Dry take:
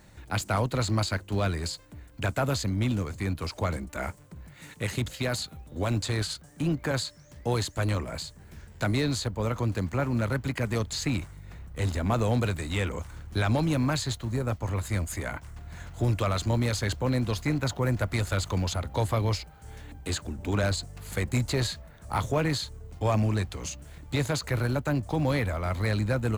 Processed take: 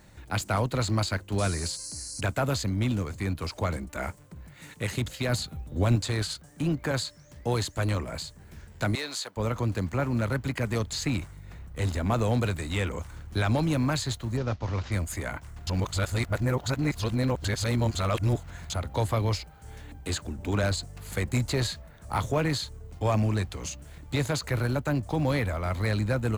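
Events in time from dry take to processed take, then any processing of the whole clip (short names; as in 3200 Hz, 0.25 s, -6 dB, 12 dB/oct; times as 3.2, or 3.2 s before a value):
1.38–2.21 painted sound noise 4000–11000 Hz -39 dBFS
5.29–5.96 low shelf 270 Hz +7.5 dB
8.95–9.37 Bessel high-pass 790 Hz
14.37–14.92 CVSD 32 kbps
15.67–18.7 reverse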